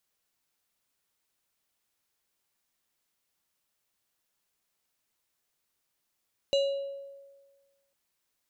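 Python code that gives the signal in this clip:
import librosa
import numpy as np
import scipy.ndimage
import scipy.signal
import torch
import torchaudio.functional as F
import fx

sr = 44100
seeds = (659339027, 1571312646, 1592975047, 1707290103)

y = fx.fm2(sr, length_s=1.4, level_db=-20.5, carrier_hz=555.0, ratio=6.15, index=0.67, index_s=1.1, decay_s=1.45, shape='exponential')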